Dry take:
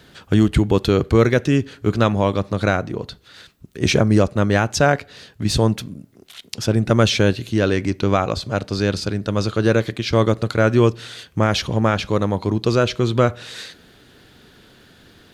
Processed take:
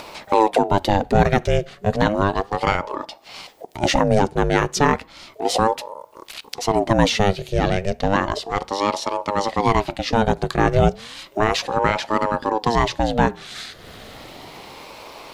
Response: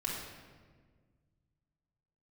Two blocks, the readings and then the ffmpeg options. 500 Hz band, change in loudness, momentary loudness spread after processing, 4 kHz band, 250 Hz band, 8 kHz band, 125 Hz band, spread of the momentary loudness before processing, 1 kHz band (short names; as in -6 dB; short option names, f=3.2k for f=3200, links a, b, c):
-1.5 dB, -1.5 dB, 20 LU, -1.5 dB, -4.0 dB, -1.0 dB, -5.5 dB, 10 LU, +6.0 dB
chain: -af "acompressor=mode=upward:threshold=-26dB:ratio=2.5,aeval=exprs='val(0)*sin(2*PI*500*n/s+500*0.5/0.33*sin(2*PI*0.33*n/s))':c=same,volume=1.5dB"